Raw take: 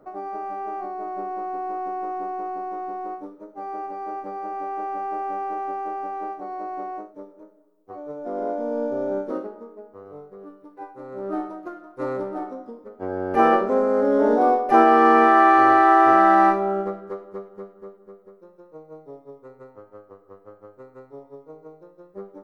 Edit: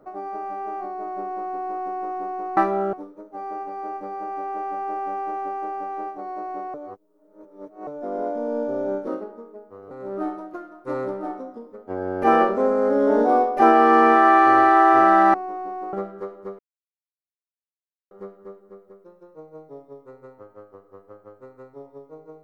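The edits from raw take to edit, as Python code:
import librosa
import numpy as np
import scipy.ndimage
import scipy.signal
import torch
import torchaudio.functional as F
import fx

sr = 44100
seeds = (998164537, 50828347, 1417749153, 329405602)

y = fx.edit(x, sr, fx.swap(start_s=2.57, length_s=0.59, other_s=16.46, other_length_s=0.36),
    fx.reverse_span(start_s=6.97, length_s=1.13),
    fx.cut(start_s=10.14, length_s=0.89),
    fx.insert_silence(at_s=17.48, length_s=1.52), tone=tone)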